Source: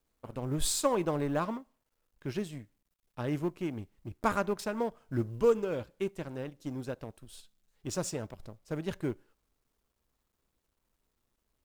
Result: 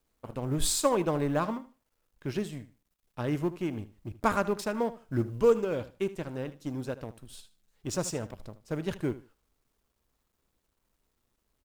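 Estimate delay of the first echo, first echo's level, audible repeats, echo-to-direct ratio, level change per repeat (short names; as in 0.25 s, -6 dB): 77 ms, -16.0 dB, 2, -16.0 dB, -13.5 dB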